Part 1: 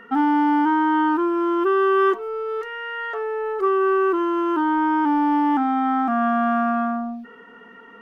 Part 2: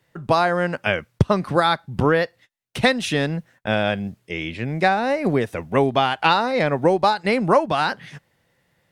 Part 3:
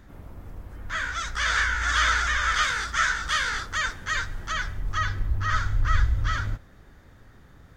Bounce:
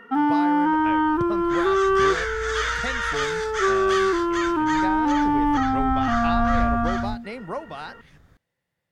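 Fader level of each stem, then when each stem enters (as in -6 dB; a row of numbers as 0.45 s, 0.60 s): -1.5 dB, -15.0 dB, -4.0 dB; 0.00 s, 0.00 s, 0.60 s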